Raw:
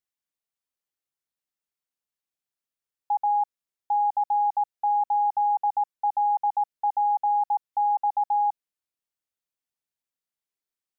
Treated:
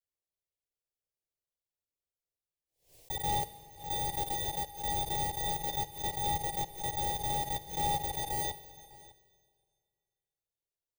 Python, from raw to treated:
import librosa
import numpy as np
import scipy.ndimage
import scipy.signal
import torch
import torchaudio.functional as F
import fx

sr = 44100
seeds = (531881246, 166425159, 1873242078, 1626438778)

p1 = fx.bit_reversed(x, sr, seeds[0], block=16)
p2 = fx.chorus_voices(p1, sr, voices=2, hz=0.3, base_ms=12, depth_ms=2.1, mix_pct=40)
p3 = fx.sample_hold(p2, sr, seeds[1], rate_hz=1000.0, jitter_pct=20)
p4 = p2 + (p3 * librosa.db_to_amplitude(-3.5))
p5 = fx.fixed_phaser(p4, sr, hz=570.0, stages=4)
p6 = p5 + 10.0 ** (-20.5 / 20.0) * np.pad(p5, (int(603 * sr / 1000.0), 0))[:len(p5)]
p7 = fx.rev_schroeder(p6, sr, rt60_s=2.1, comb_ms=38, drr_db=14.0)
p8 = fx.pre_swell(p7, sr, db_per_s=140.0)
y = p8 * librosa.db_to_amplitude(-5.0)